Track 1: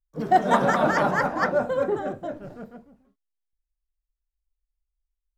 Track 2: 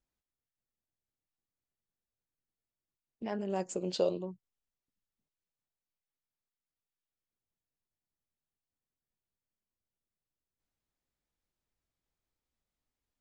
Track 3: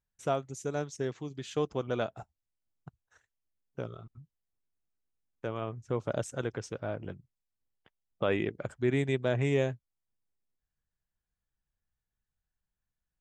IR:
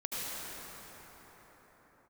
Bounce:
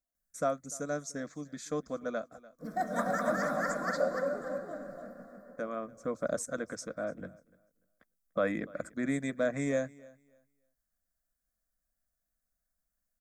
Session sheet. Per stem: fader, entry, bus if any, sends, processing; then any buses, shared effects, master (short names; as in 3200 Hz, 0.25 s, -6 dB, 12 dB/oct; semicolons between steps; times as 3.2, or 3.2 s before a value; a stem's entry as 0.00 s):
-10.5 dB, 2.45 s, send -17.5 dB, echo send -4 dB, dry
-7.0 dB, 0.00 s, send -14 dB, no echo send, bell 700 Hz +13 dB 0.38 oct
+1.5 dB, 0.15 s, no send, echo send -23 dB, auto duck -10 dB, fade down 1.60 s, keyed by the second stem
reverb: on, pre-delay 69 ms
echo: feedback echo 0.294 s, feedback 21%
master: high shelf 5700 Hz +8.5 dB; fixed phaser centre 580 Hz, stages 8